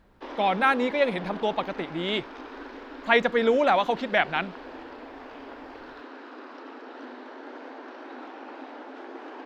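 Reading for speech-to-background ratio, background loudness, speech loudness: 17.0 dB, −41.5 LKFS, −24.5 LKFS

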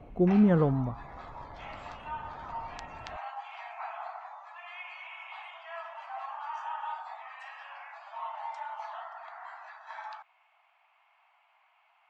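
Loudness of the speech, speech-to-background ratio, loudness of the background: −25.0 LKFS, 17.0 dB, −42.0 LKFS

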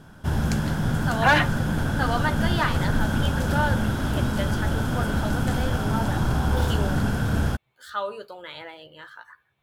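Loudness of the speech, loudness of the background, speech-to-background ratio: −29.5 LKFS, −25.0 LKFS, −4.5 dB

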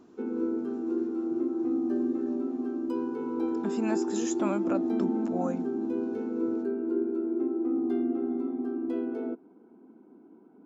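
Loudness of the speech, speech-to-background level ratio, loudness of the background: −35.0 LKFS, −4.5 dB, −30.5 LKFS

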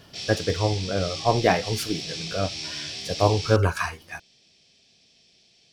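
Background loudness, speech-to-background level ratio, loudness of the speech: −32.0 LKFS, 7.0 dB, −25.0 LKFS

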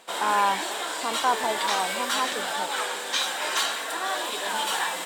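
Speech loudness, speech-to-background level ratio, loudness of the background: −28.5 LKFS, −1.5 dB, −27.0 LKFS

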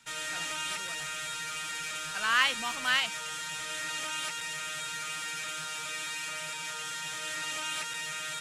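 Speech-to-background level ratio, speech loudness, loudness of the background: 6.5 dB, −28.0 LKFS, −34.5 LKFS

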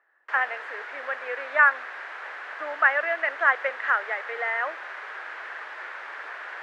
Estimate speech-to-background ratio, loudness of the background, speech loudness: 12.0 dB, −36.5 LKFS, −24.5 LKFS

